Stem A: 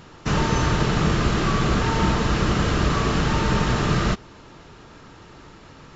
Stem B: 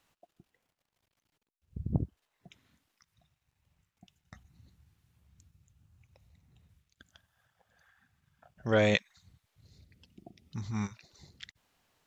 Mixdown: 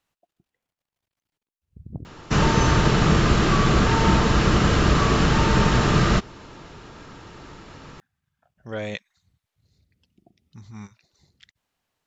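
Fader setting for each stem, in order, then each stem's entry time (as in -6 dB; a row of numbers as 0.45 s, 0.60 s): +2.5 dB, -5.5 dB; 2.05 s, 0.00 s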